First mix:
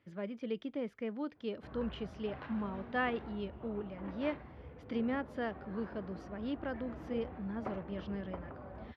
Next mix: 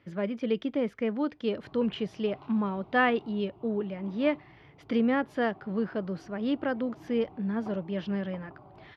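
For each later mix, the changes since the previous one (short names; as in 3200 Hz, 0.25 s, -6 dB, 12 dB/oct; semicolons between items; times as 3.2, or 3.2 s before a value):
speech +9.5 dB; background: add fixed phaser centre 340 Hz, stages 8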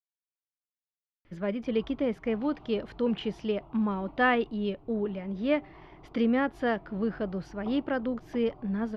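speech: entry +1.25 s; master: remove HPF 74 Hz 24 dB/oct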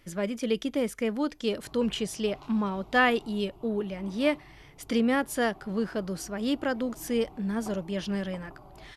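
speech: entry -1.25 s; master: remove air absorption 310 m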